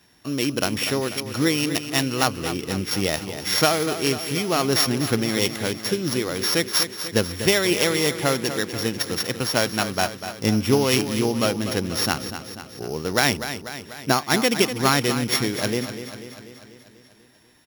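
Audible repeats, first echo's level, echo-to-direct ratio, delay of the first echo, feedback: 6, −10.5 dB, −8.5 dB, 245 ms, 60%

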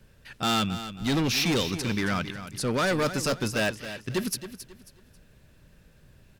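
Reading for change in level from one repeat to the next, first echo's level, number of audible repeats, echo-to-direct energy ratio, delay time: −10.0 dB, −12.0 dB, 3, −11.5 dB, 271 ms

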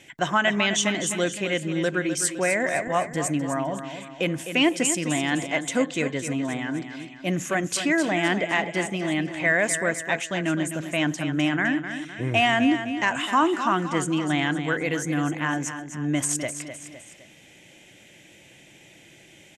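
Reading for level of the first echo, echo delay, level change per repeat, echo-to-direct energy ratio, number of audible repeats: −9.5 dB, 256 ms, −6.5 dB, −8.5 dB, 3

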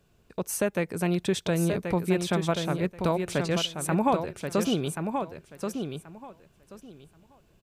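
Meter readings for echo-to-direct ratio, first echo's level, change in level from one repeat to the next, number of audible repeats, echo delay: −6.0 dB, −6.0 dB, −15.0 dB, 2, 1,081 ms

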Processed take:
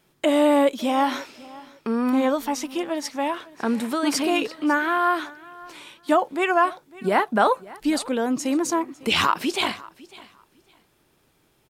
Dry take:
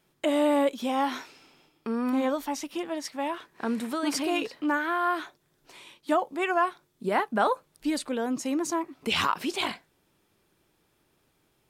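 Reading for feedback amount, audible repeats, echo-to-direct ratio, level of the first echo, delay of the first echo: 20%, 2, −21.0 dB, −21.0 dB, 552 ms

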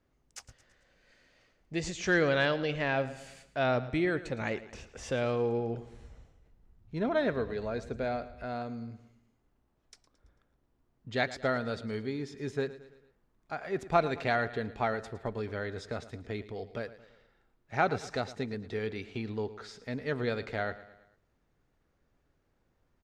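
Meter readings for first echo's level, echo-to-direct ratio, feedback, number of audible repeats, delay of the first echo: −16.0 dB, −15.0 dB, 49%, 4, 111 ms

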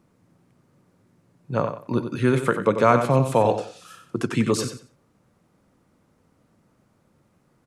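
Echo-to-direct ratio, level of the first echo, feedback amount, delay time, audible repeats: −9.0 dB, −9.0 dB, 22%, 92 ms, 2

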